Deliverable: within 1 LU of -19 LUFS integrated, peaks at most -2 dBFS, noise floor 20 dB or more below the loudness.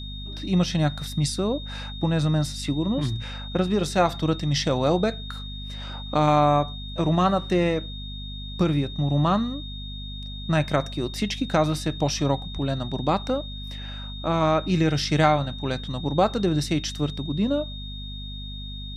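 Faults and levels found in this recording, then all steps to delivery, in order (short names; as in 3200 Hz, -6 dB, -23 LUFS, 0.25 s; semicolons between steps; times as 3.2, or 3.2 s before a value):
hum 50 Hz; harmonics up to 250 Hz; hum level -34 dBFS; steady tone 3700 Hz; tone level -38 dBFS; loudness -24.5 LUFS; peak -6.5 dBFS; loudness target -19.0 LUFS
-> notches 50/100/150/200/250 Hz; notch 3700 Hz, Q 30; gain +5.5 dB; limiter -2 dBFS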